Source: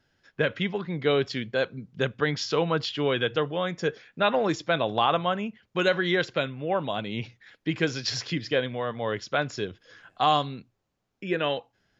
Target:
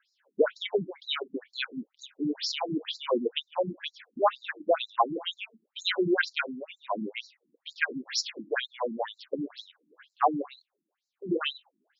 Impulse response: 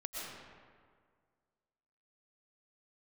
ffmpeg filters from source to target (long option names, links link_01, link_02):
-af "afftfilt=real='re*between(b*sr/1024,240*pow(5600/240,0.5+0.5*sin(2*PI*2.1*pts/sr))/1.41,240*pow(5600/240,0.5+0.5*sin(2*PI*2.1*pts/sr))*1.41)':imag='im*between(b*sr/1024,240*pow(5600/240,0.5+0.5*sin(2*PI*2.1*pts/sr))/1.41,240*pow(5600/240,0.5+0.5*sin(2*PI*2.1*pts/sr))*1.41)':win_size=1024:overlap=0.75,volume=5dB"